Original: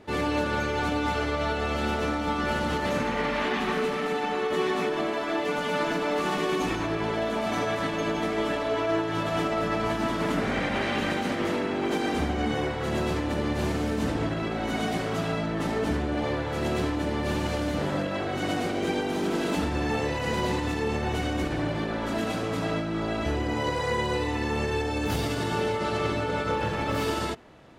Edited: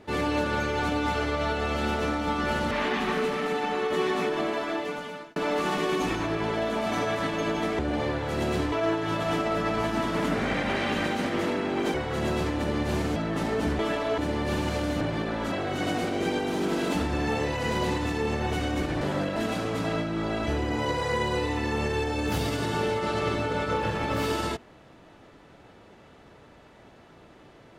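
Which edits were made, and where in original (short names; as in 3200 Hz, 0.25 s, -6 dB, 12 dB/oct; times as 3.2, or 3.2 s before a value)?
2.71–3.31 cut
5.18–5.96 fade out
8.39–8.78 swap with 16.03–16.96
12–12.64 cut
13.86–15.4 cut
17.79–18.14 swap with 21.63–22.14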